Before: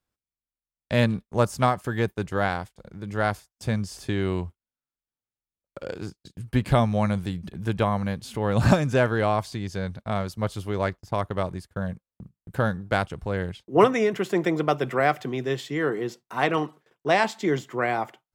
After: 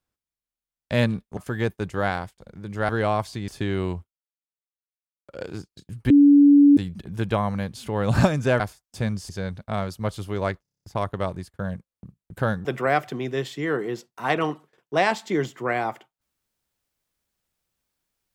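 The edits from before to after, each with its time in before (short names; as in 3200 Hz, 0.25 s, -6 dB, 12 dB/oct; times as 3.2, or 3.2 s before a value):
1.37–1.75 cut
3.27–3.96 swap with 9.08–9.67
4.46–5.9 dip -23.5 dB, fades 0.18 s
6.58–7.25 bleep 286 Hz -9.5 dBFS
11 stutter 0.03 s, 8 plays
12.82–14.78 cut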